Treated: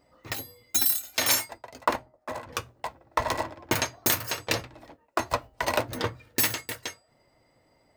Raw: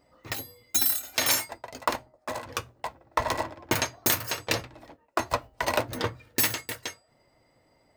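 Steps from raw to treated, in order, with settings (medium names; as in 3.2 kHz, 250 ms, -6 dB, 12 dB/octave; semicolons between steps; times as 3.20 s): 0.85–2.53 s: three bands expanded up and down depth 40%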